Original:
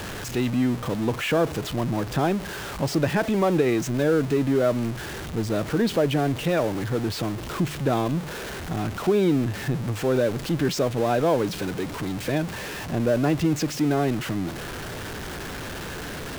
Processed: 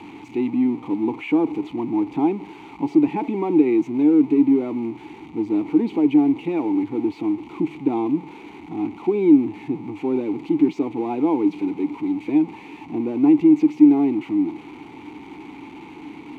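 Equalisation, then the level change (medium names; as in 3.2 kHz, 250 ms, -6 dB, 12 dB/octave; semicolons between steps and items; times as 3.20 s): band-stop 5.2 kHz, Q 7.9; dynamic bell 450 Hz, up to +7 dB, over -34 dBFS, Q 0.76; vowel filter u; +8.5 dB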